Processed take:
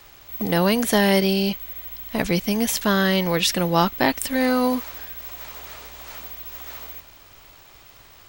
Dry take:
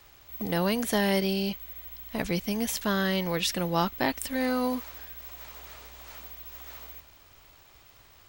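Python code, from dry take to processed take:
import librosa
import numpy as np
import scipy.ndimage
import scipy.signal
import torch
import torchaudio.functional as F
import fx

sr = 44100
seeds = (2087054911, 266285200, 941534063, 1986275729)

y = fx.peak_eq(x, sr, hz=68.0, db=-5.0, octaves=0.81)
y = F.gain(torch.from_numpy(y), 7.5).numpy()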